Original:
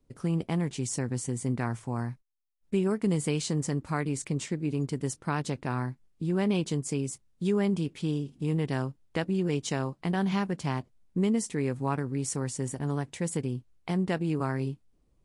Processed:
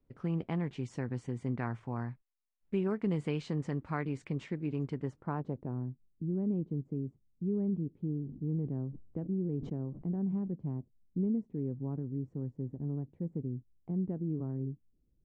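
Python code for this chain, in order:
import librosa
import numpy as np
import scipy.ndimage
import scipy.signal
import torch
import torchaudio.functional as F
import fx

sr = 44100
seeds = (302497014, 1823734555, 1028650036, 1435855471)

y = fx.filter_sweep_lowpass(x, sr, from_hz=2400.0, to_hz=320.0, start_s=4.89, end_s=5.86, q=0.85)
y = fx.sustainer(y, sr, db_per_s=82.0, at=(8.06, 10.52))
y = F.gain(torch.from_numpy(y), -5.0).numpy()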